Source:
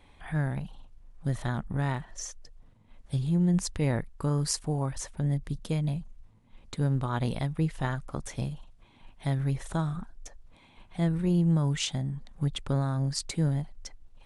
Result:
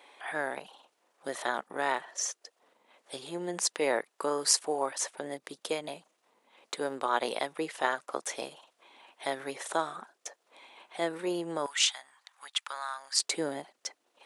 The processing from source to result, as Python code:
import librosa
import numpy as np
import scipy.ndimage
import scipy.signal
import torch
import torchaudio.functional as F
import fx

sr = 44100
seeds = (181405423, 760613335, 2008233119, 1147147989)

y = fx.highpass(x, sr, hz=fx.steps((0.0, 400.0), (11.66, 1000.0), (13.2, 360.0)), slope=24)
y = y * 10.0 ** (6.0 / 20.0)